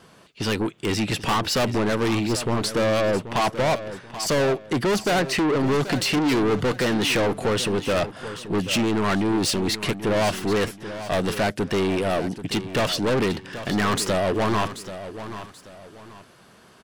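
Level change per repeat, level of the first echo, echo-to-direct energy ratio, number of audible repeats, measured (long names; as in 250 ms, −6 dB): −10.0 dB, −12.5 dB, −12.0 dB, 2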